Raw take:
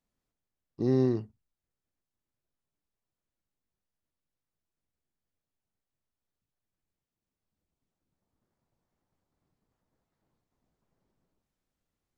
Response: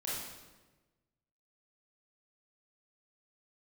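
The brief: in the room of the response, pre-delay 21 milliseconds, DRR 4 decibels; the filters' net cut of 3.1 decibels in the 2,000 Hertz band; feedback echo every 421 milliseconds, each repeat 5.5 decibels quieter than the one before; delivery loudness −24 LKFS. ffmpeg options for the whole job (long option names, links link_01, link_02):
-filter_complex "[0:a]equalizer=frequency=2000:width_type=o:gain=-3.5,aecho=1:1:421|842|1263|1684|2105|2526|2947:0.531|0.281|0.149|0.079|0.0419|0.0222|0.0118,asplit=2[link_01][link_02];[1:a]atrim=start_sample=2205,adelay=21[link_03];[link_02][link_03]afir=irnorm=-1:irlink=0,volume=-7dB[link_04];[link_01][link_04]amix=inputs=2:normalize=0,volume=6.5dB"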